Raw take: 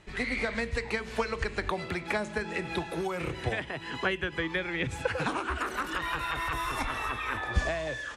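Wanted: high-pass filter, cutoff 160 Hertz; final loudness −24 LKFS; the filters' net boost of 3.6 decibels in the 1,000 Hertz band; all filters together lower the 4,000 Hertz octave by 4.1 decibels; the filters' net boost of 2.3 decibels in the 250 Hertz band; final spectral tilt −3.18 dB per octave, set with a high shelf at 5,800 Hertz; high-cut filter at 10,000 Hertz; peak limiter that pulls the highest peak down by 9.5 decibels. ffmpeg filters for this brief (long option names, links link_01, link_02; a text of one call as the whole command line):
ffmpeg -i in.wav -af "highpass=160,lowpass=10000,equalizer=frequency=250:width_type=o:gain=4,equalizer=frequency=1000:width_type=o:gain=4.5,equalizer=frequency=4000:width_type=o:gain=-7,highshelf=frequency=5800:gain=4,volume=8.5dB,alimiter=limit=-14dB:level=0:latency=1" out.wav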